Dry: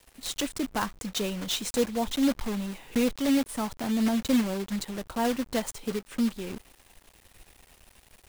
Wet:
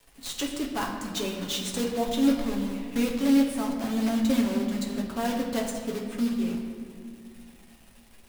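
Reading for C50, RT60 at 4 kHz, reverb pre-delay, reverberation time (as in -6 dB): 4.5 dB, 1.4 s, 7 ms, 2.2 s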